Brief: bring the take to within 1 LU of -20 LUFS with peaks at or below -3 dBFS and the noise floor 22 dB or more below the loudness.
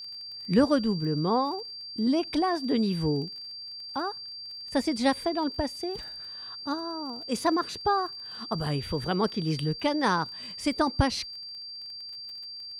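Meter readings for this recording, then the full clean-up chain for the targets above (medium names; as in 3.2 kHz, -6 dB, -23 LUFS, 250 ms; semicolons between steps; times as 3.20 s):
tick rate 25 per s; steady tone 4.7 kHz; tone level -38 dBFS; loudness -29.0 LUFS; peak level -10.0 dBFS; loudness target -20.0 LUFS
-> de-click; band-stop 4.7 kHz, Q 30; trim +9 dB; peak limiter -3 dBFS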